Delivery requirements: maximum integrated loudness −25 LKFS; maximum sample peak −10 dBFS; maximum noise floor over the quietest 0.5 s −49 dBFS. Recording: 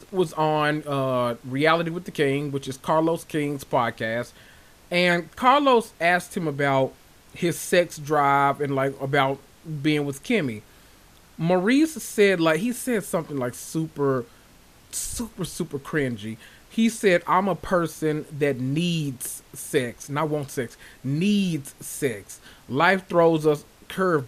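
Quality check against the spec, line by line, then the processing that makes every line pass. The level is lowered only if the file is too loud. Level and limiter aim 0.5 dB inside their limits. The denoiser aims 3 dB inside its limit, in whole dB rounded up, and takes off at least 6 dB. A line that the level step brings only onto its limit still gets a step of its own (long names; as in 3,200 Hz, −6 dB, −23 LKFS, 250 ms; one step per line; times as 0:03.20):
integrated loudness −24.0 LKFS: out of spec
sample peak −5.0 dBFS: out of spec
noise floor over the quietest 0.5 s −52 dBFS: in spec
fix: level −1.5 dB
brickwall limiter −10.5 dBFS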